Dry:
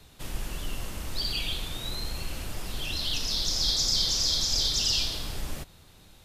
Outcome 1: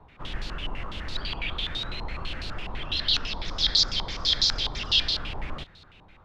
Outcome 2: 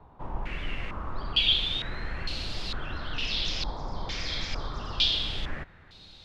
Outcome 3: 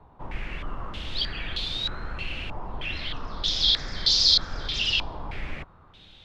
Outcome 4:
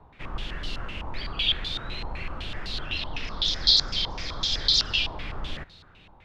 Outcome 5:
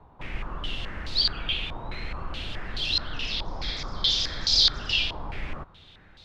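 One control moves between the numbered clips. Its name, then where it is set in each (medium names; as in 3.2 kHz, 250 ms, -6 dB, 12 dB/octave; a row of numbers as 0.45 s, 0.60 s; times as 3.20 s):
step-sequenced low-pass, rate: 12 Hz, 2.2 Hz, 3.2 Hz, 7.9 Hz, 4.7 Hz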